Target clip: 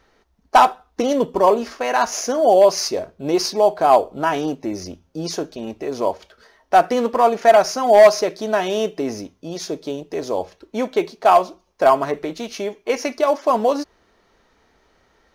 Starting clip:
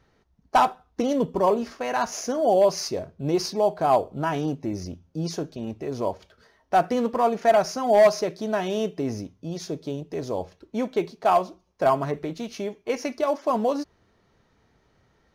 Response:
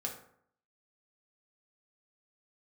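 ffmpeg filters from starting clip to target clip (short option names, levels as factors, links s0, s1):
-af "equalizer=f=120:w=0.91:g=-14.5,volume=2.37"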